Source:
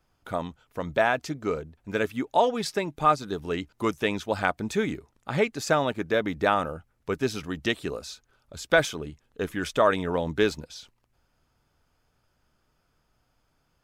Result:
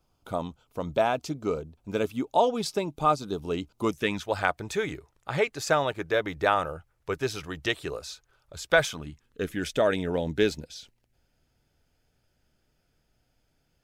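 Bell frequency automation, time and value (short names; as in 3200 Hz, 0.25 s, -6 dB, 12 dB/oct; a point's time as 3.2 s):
bell -13 dB 0.55 oct
3.87 s 1800 Hz
4.29 s 230 Hz
8.68 s 230 Hz
9.55 s 1100 Hz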